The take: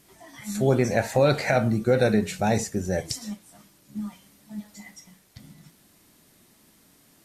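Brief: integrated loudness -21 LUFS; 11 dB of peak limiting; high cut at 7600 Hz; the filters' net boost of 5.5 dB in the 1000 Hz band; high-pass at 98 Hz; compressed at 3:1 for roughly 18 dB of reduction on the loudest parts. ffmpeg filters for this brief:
-af "highpass=98,lowpass=7.6k,equalizer=f=1k:t=o:g=8.5,acompressor=threshold=-39dB:ratio=3,volume=22dB,alimiter=limit=-9.5dB:level=0:latency=1"

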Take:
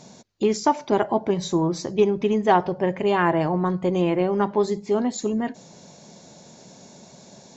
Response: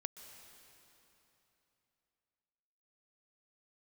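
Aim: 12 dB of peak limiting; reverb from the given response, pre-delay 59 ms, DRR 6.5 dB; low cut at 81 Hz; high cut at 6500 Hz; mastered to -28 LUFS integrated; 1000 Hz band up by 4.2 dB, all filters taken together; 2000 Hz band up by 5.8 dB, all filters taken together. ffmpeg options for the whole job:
-filter_complex "[0:a]highpass=81,lowpass=6.5k,equalizer=f=1k:t=o:g=4,equalizer=f=2k:t=o:g=6,alimiter=limit=-13dB:level=0:latency=1,asplit=2[a][b];[1:a]atrim=start_sample=2205,adelay=59[c];[b][c]afir=irnorm=-1:irlink=0,volume=-4dB[d];[a][d]amix=inputs=2:normalize=0,volume=-4.5dB"

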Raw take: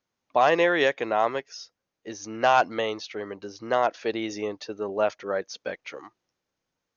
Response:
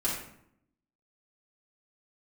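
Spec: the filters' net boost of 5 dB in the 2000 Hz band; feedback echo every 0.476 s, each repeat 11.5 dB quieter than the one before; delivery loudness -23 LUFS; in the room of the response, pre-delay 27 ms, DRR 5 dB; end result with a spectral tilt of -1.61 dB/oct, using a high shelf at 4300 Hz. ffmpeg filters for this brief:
-filter_complex "[0:a]equalizer=f=2k:t=o:g=8,highshelf=f=4.3k:g=-9,aecho=1:1:476|952|1428:0.266|0.0718|0.0194,asplit=2[a][b];[1:a]atrim=start_sample=2205,adelay=27[c];[b][c]afir=irnorm=-1:irlink=0,volume=-12.5dB[d];[a][d]amix=inputs=2:normalize=0"

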